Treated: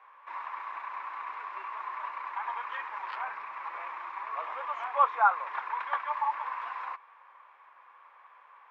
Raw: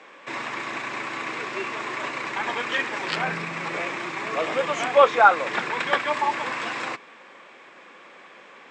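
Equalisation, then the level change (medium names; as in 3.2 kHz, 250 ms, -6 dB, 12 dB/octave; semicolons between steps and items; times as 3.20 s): ladder band-pass 1.1 kHz, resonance 65%; 0.0 dB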